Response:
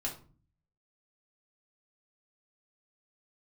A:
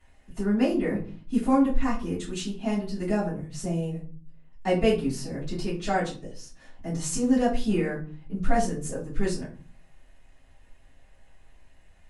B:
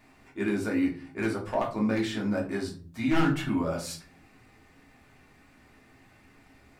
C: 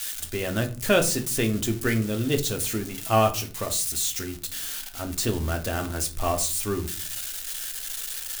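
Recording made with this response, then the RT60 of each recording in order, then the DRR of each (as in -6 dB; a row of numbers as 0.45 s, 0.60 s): B; 0.40 s, 0.40 s, 0.40 s; -12.0 dB, -3.0 dB, 4.5 dB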